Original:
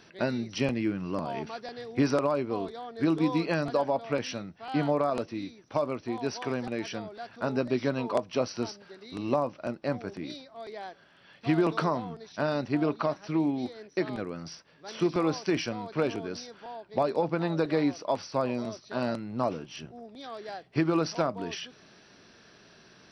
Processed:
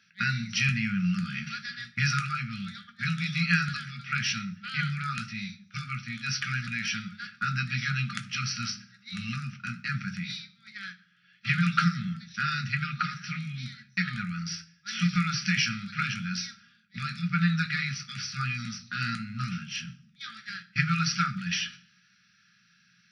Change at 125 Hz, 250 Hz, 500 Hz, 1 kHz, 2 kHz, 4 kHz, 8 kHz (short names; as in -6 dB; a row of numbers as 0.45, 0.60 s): +6.0 dB, -3.5 dB, under -40 dB, -2.0 dB, +10.0 dB, +8.0 dB, n/a